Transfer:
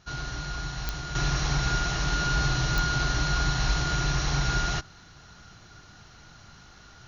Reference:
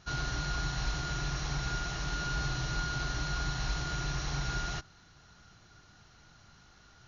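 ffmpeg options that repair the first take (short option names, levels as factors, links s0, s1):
-af "adeclick=t=4,asetnsamples=n=441:p=0,asendcmd='1.15 volume volume -8dB',volume=1"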